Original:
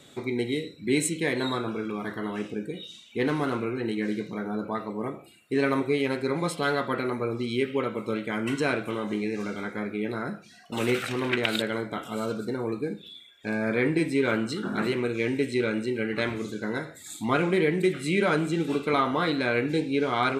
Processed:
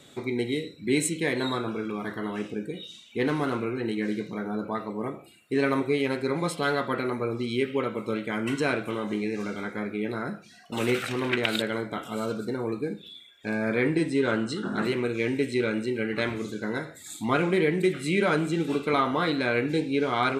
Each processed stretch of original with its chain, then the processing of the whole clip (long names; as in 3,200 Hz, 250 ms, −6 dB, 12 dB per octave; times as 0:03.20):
0:13.97–0:14.85: low-pass filter 10,000 Hz 24 dB per octave + notch filter 2,300 Hz, Q 6.8
whole clip: no processing